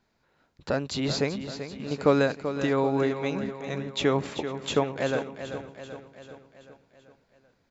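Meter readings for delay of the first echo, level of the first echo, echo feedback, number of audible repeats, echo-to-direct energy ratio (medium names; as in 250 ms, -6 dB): 386 ms, -10.0 dB, no regular repeats, 7, -8.0 dB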